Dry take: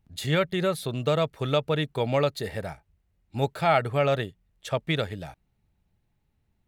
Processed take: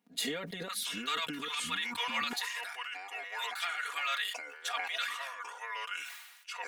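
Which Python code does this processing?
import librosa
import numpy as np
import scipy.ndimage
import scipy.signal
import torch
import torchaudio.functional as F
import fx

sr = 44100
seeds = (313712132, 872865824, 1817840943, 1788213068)

y = fx.highpass(x, sr, hz=fx.steps((0.0, 230.0), (0.68, 1300.0)), slope=24)
y = fx.over_compress(y, sr, threshold_db=-34.0, ratio=-1.0)
y = fx.echo_pitch(y, sr, ms=624, semitones=-4, count=2, db_per_echo=-6.0)
y = y + 1.0 * np.pad(y, (int(4.2 * sr / 1000.0), 0))[:len(y)]
y = fx.sustainer(y, sr, db_per_s=48.0)
y = y * librosa.db_to_amplitude(-4.5)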